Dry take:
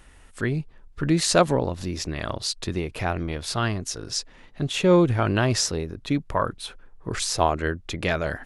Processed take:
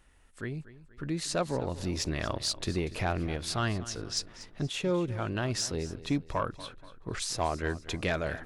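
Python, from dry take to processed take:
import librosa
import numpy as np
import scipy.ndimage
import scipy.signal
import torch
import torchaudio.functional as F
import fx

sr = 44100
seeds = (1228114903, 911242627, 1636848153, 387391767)

y = fx.high_shelf(x, sr, hz=fx.line((6.52, 7000.0), (7.2, 10000.0)), db=-11.5, at=(6.52, 7.2), fade=0.02)
y = fx.rider(y, sr, range_db=10, speed_s=0.5)
y = 10.0 ** (-11.5 / 20.0) * np.tanh(y / 10.0 ** (-11.5 / 20.0))
y = fx.air_absorb(y, sr, metres=59.0, at=(3.75, 4.17))
y = fx.echo_feedback(y, sr, ms=239, feedback_pct=43, wet_db=-16.5)
y = y * librosa.db_to_amplitude(-6.5)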